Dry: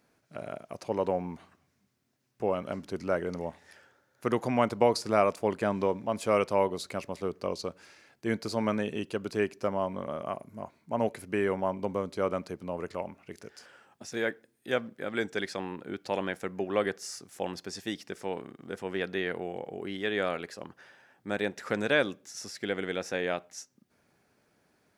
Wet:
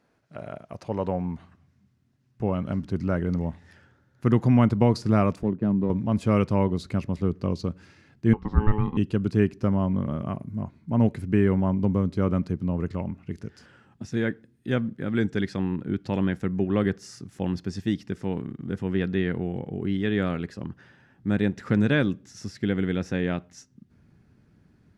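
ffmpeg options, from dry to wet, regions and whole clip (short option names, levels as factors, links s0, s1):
-filter_complex "[0:a]asettb=1/sr,asplit=3[s0][s1][s2];[s0]atrim=end=5.434[s3];[s1]atrim=start=5.43:end=5.9,asetpts=PTS-STARTPTS,afade=t=in:d=0.004:c=qsin,afade=t=out:st=0.466:d=0.004:c=qsin,highpass=160,lowpass=5400,equalizer=f=2500:w=0.3:g=-12.5,adynamicsmooth=sensitivity=8:basefreq=1700[s4];[s2]atrim=start=5.896[s5];[s3][s4]acrossfade=d=0.004:c1=hsin:c2=qsin[s6];[s6][s5]acrossfade=d=0.004:c1=qsin:c2=hsin,asettb=1/sr,asplit=3[s7][s8][s9];[s7]atrim=end=8.334[s10];[s8]atrim=start=8.33:end=8.97,asetpts=PTS-STARTPTS,afade=t=in:d=0.004:c=qsin,afade=t=out:st=0.636:d=0.004:c=qsin,lowpass=1700,aeval=exprs='val(0)*sin(2*PI*640*n/s)':c=same[s11];[s9]atrim=start=8.966[s12];[s10][s11]acrossfade=d=0.004:c1=hsin:c2=qsin[s13];[s13][s12]acrossfade=d=0.004:c1=qsin:c2=hsin,aemphasis=mode=reproduction:type=50kf,bandreject=f=2300:w=23,asubboost=boost=9.5:cutoff=190,volume=1.26"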